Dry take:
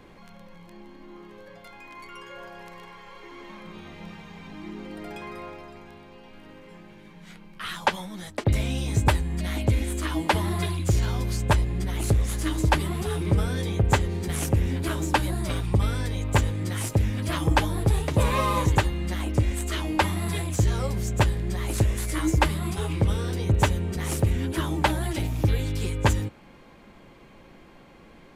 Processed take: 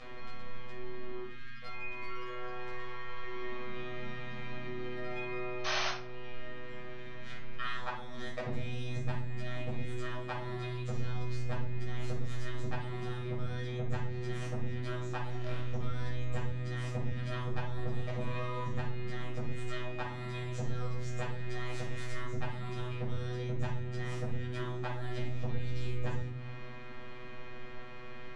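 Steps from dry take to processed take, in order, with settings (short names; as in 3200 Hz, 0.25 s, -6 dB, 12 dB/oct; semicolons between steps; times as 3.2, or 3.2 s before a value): 1.22–1.63 Chebyshev band-stop 240–1300 Hz, order 4; 20.99–22.11 low shelf 410 Hz -9 dB; compressor 6:1, threshold -35 dBFS, peak gain reduction 19 dB; robotiser 124 Hz; 5.64–5.89 painted sound noise 560–6400 Hz -32 dBFS; 15.29–15.81 sample-rate reducer 6400 Hz, jitter 0%; air absorption 140 m; shoebox room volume 510 m³, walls furnished, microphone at 6.2 m; mismatched tape noise reduction encoder only; gain -6.5 dB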